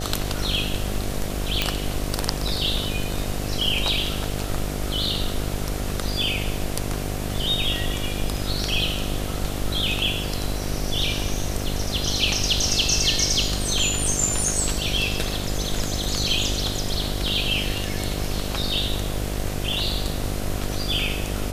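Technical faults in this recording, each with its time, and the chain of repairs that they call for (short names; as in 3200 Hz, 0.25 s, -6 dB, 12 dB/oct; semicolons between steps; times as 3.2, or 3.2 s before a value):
buzz 50 Hz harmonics 15 -29 dBFS
1.62 pop -4 dBFS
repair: de-click; de-hum 50 Hz, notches 15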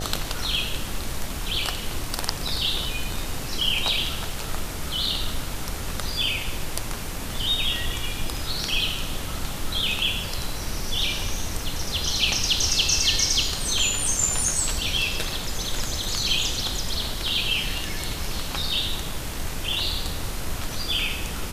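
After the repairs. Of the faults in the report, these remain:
none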